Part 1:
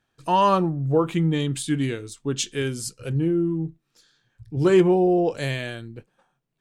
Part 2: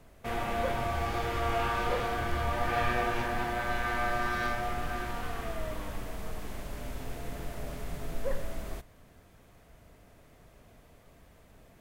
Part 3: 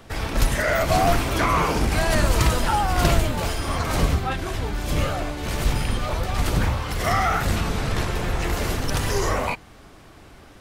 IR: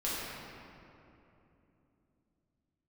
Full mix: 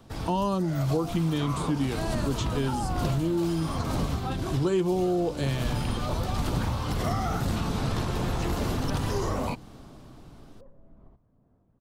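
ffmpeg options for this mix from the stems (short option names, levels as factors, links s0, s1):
-filter_complex "[0:a]volume=0.891,asplit=2[s0][s1];[1:a]acompressor=threshold=0.0158:ratio=8,lowpass=1200,aphaser=in_gain=1:out_gain=1:delay=1:decay=0.24:speed=1.2:type=sinusoidal,adelay=2350,volume=0.2[s2];[2:a]dynaudnorm=f=410:g=7:m=3.76,volume=0.335[s3];[s1]apad=whole_len=467753[s4];[s3][s4]sidechaincompress=threshold=0.0562:ratio=4:attack=16:release=405[s5];[s0][s2][s5]amix=inputs=3:normalize=0,equalizer=f=125:t=o:w=1:g=6,equalizer=f=250:t=o:w=1:g=7,equalizer=f=1000:t=o:w=1:g=3,equalizer=f=2000:t=o:w=1:g=-7,equalizer=f=4000:t=o:w=1:g=3,acrossover=split=610|3400[s6][s7][s8];[s6]acompressor=threshold=0.0501:ratio=4[s9];[s7]acompressor=threshold=0.0178:ratio=4[s10];[s8]acompressor=threshold=0.00631:ratio=4[s11];[s9][s10][s11]amix=inputs=3:normalize=0"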